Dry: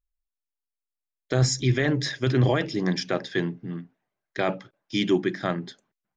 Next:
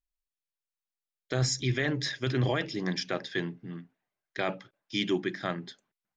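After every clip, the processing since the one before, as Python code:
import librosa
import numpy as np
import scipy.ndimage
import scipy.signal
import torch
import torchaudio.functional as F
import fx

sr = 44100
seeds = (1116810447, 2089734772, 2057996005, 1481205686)

y = fx.peak_eq(x, sr, hz=3100.0, db=5.0, octaves=2.7)
y = F.gain(torch.from_numpy(y), -7.0).numpy()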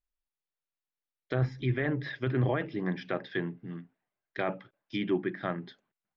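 y = scipy.ndimage.gaussian_filter1d(x, 2.1, mode='constant')
y = fx.env_lowpass_down(y, sr, base_hz=2100.0, full_db=-28.0)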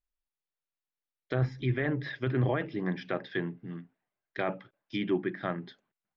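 y = x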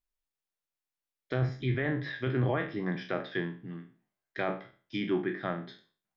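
y = fx.spec_trails(x, sr, decay_s=0.39)
y = F.gain(torch.from_numpy(y), -1.5).numpy()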